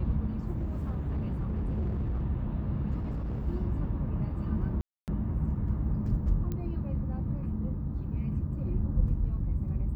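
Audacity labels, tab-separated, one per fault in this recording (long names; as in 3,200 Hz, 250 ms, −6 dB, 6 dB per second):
0.530000	2.220000	clipping −27.5 dBFS
2.980000	3.480000	clipping −30 dBFS
4.810000	5.080000	drop-out 268 ms
6.520000	6.520000	click −23 dBFS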